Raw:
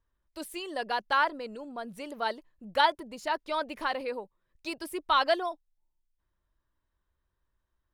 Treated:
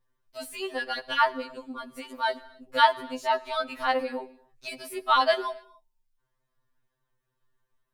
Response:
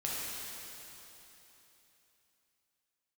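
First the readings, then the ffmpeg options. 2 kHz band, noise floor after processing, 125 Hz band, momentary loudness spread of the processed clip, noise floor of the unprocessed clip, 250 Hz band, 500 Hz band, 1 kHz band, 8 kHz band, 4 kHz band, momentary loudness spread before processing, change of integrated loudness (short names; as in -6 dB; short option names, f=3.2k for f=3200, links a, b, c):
+2.5 dB, -80 dBFS, n/a, 18 LU, -81 dBFS, +0.5 dB, +3.0 dB, +3.5 dB, +2.5 dB, +3.0 dB, 15 LU, +4.0 dB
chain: -filter_complex "[0:a]asplit=2[a][b];[1:a]atrim=start_sample=2205,afade=t=out:st=0.34:d=0.01,atrim=end_sample=15435[c];[b][c]afir=irnorm=-1:irlink=0,volume=-19.5dB[d];[a][d]amix=inputs=2:normalize=0,afftfilt=real='re*2.45*eq(mod(b,6),0)':imag='im*2.45*eq(mod(b,6),0)':win_size=2048:overlap=0.75,volume=4.5dB"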